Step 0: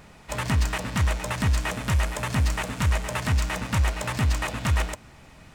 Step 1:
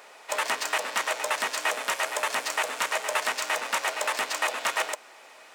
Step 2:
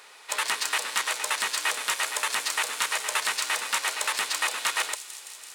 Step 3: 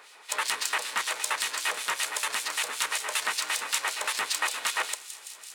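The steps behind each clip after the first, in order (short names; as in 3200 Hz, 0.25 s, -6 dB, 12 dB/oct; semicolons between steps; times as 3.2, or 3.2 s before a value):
HPF 450 Hz 24 dB/oct; gain +3.5 dB
fifteen-band EQ 250 Hz -7 dB, 630 Hz -10 dB, 4000 Hz +5 dB, 10000 Hz +6 dB; thin delay 0.167 s, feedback 81%, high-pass 4900 Hz, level -10.5 dB
harmonic tremolo 5.2 Hz, depth 70%, crossover 2400 Hz; gain +1.5 dB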